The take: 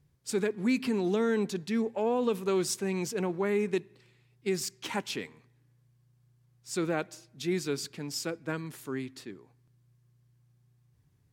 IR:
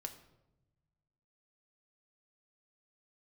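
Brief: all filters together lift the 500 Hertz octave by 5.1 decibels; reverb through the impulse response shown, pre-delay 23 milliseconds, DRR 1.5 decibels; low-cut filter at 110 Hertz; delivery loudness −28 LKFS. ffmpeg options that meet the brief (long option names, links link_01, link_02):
-filter_complex "[0:a]highpass=110,equalizer=frequency=500:width_type=o:gain=6.5,asplit=2[link_01][link_02];[1:a]atrim=start_sample=2205,adelay=23[link_03];[link_02][link_03]afir=irnorm=-1:irlink=0,volume=1.5dB[link_04];[link_01][link_04]amix=inputs=2:normalize=0,volume=-2dB"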